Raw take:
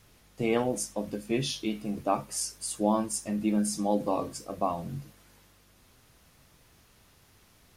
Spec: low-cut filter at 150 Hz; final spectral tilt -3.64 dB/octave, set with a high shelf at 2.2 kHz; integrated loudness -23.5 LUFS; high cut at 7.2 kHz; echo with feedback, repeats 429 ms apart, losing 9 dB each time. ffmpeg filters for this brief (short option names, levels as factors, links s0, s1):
-af "highpass=150,lowpass=7200,highshelf=f=2200:g=5.5,aecho=1:1:429|858|1287|1716:0.355|0.124|0.0435|0.0152,volume=2.11"